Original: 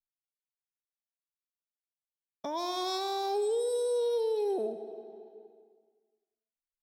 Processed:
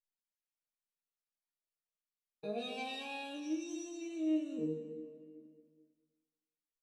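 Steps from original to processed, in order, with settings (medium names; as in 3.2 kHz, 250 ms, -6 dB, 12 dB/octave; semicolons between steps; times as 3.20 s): pitch shift -6 st; chord resonator D#3 sus4, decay 0.42 s; feedback delay 223 ms, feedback 25%, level -12 dB; trim +10.5 dB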